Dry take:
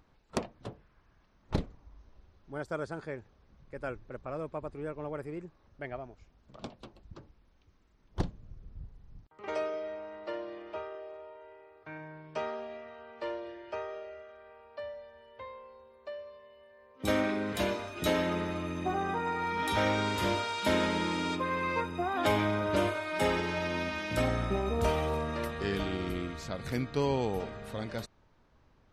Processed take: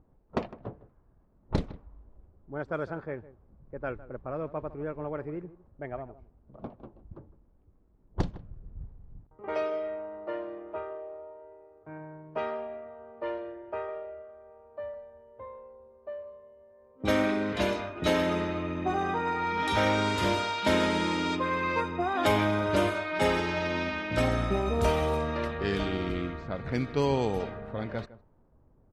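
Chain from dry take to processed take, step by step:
surface crackle 100 per second −57 dBFS
slap from a distant wall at 27 metres, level −17 dB
low-pass that shuts in the quiet parts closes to 600 Hz, open at −25.5 dBFS
level +3 dB

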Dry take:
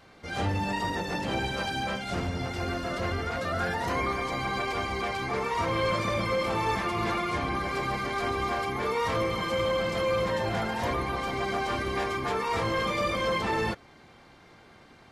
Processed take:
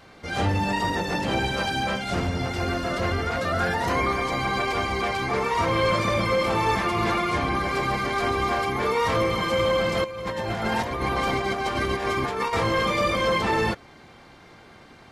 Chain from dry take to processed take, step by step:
0:10.04–0:12.53: compressor whose output falls as the input rises −31 dBFS, ratio −0.5
level +5 dB

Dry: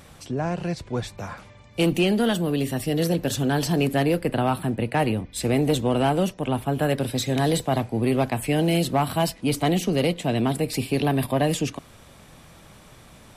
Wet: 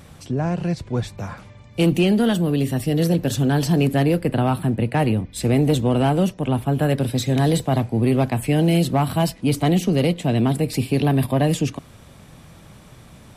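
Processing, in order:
parametric band 120 Hz +6.5 dB 2.6 octaves

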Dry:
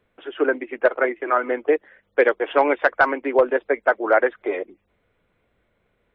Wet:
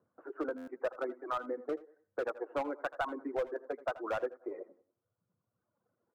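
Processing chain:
elliptic band-pass filter 110–1,300 Hz, stop band 40 dB
repeating echo 93 ms, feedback 33%, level −13 dB
reverb reduction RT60 1.4 s
hard clipping −13.5 dBFS, distortion −13 dB
phase shifter 0.94 Hz, delay 4.2 ms, feedback 30%
downward compressor 2.5 to 1, threshold −27 dBFS, peak gain reduction 9.5 dB
notch filter 420 Hz, Q 12
single-tap delay 81 ms −18 dB
buffer that repeats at 0:00.57, samples 512, times 8
level −7.5 dB

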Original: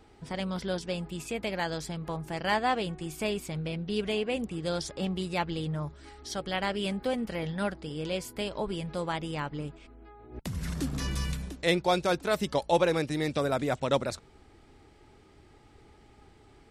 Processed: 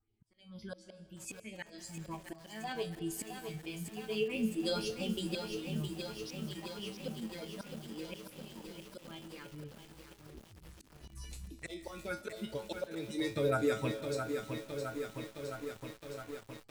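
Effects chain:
spectral dynamics exaggerated over time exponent 1.5
all-pass phaser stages 4, 2.1 Hz, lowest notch 120–1,500 Hz
0:09.21–0:10.98: downward compressor 2 to 1, threshold −50 dBFS, peak gain reduction 11.5 dB
tuned comb filter 110 Hz, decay 0.23 s, harmonics all, mix 90%
volume swells 731 ms
automatic gain control gain up to 12.5 dB
convolution reverb RT60 1.9 s, pre-delay 115 ms, DRR 14 dB
feedback echo at a low word length 664 ms, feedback 80%, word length 9 bits, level −6 dB
level +1.5 dB

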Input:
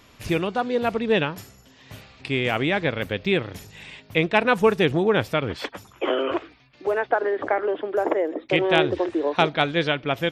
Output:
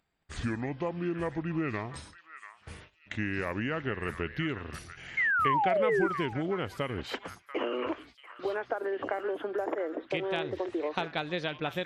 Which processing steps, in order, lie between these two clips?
gliding playback speed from 67% → 107%
noise gate −45 dBFS, range −57 dB
downward compressor, threshold −24 dBFS, peak gain reduction 11.5 dB
sound drawn into the spectrogram fall, 0:05.17–0:06.07, 320–2,200 Hz −22 dBFS
upward compression, threshold −49 dBFS
on a send: echo through a band-pass that steps 689 ms, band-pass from 1,500 Hz, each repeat 1.4 octaves, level −7.5 dB
on the sum: level −4.5 dB

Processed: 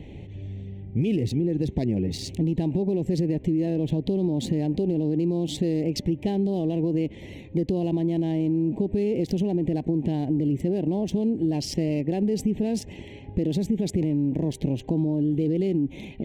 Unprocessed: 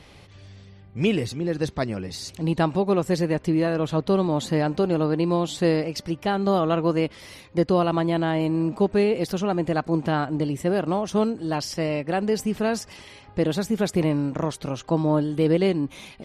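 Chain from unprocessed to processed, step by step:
adaptive Wiener filter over 9 samples
low shelf with overshoot 450 Hz +6.5 dB, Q 1.5
brickwall limiter −14.5 dBFS, peak gain reduction 10.5 dB
downward compressor, threshold −24 dBFS, peak gain reduction 7 dB
Butterworth band-reject 1,300 Hz, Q 0.99
level +3.5 dB

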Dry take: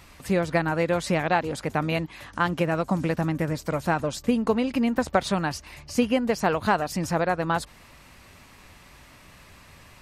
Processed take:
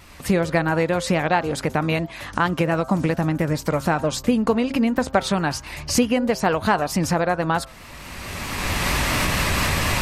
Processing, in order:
camcorder AGC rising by 20 dB per second
hum removal 132.6 Hz, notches 12
pitch vibrato 4.5 Hz 45 cents
level +3 dB

